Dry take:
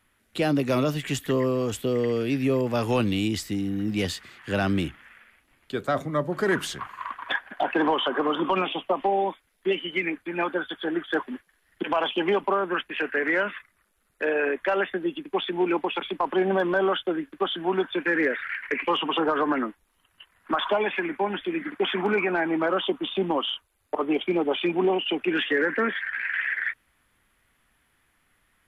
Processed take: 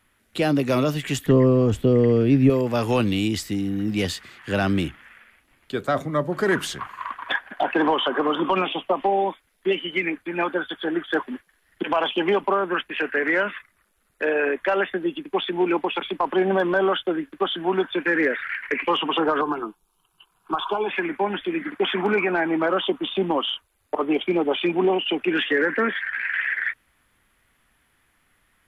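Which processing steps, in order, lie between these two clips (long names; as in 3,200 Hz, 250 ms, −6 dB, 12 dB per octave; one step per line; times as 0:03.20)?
0:01.26–0:02.50: spectral tilt −3 dB per octave
0:19.41–0:20.89: phaser with its sweep stopped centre 380 Hz, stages 8
level +2.5 dB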